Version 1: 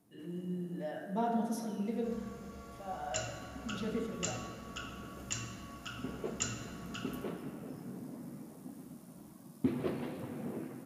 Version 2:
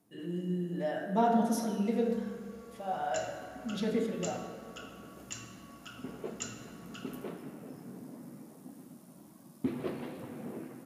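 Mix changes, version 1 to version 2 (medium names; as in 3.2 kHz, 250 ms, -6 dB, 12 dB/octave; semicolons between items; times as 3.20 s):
speech +7.0 dB; second sound -4.0 dB; master: add bass shelf 110 Hz -8 dB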